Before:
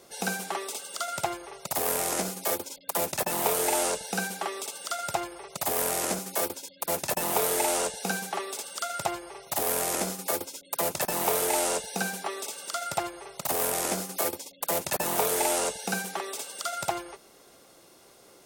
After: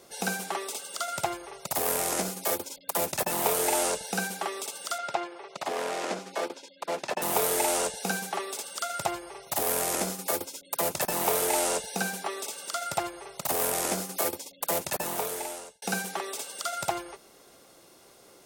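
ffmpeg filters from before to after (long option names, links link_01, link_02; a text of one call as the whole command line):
ffmpeg -i in.wav -filter_complex "[0:a]asettb=1/sr,asplit=3[link_01][link_02][link_03];[link_01]atrim=end=4.984[link_04];[link_02]atrim=start=4.98:end=7.22,asetpts=PTS-STARTPTS,afade=type=in:duration=0.004:curve=qsin,afade=type=out:start_time=2.236:duration=0.004:curve=qsin,highpass=250,lowpass=4200[link_05];[link_03]atrim=start=7.216[link_06];[link_04][link_05]acrossfade=duration=0.004:curve1=hsin:curve2=qsin[link_07];[link_07][link_06]acrossfade=duration=0.004:curve1=qsin:curve2=hsin,asplit=2[link_08][link_09];[link_08]atrim=end=15.82,asetpts=PTS-STARTPTS,afade=type=out:start_time=14.7:duration=1.12[link_10];[link_09]atrim=start=15.82,asetpts=PTS-STARTPTS,afade=type=in:duration=0.004:curve=hsin[link_11];[link_10][link_11]concat=n=2:v=0:a=1" out.wav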